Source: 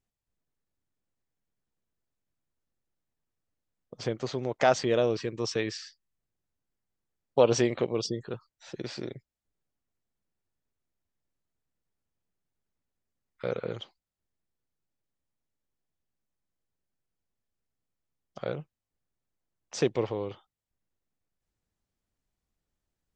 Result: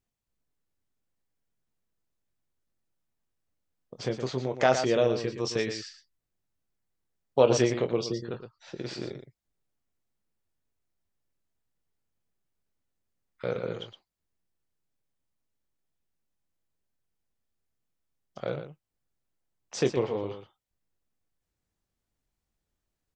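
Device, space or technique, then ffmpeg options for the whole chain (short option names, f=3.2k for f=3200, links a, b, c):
slapback doubling: -filter_complex "[0:a]asettb=1/sr,asplit=3[a][b][c];[a]atrim=end=8.034[d];[b]atrim=start=8.03:end=8.84,asetpts=PTS-STARTPTS,afade=t=in:d=0.004:c=qsin,afade=t=out:st=0.806:d=0.004:c=qsin,lowpass=5.2k[e];[c]atrim=start=8.836[f];[d][e]acrossfade=d=0.004:c1=hsin:c2=qsin[g];[g][f]acrossfade=d=0.004:c1=qsin:c2=hsin,asplit=3[h][i][j];[i]adelay=23,volume=-9dB[k];[j]adelay=117,volume=-9dB[l];[h][k][l]amix=inputs=3:normalize=0"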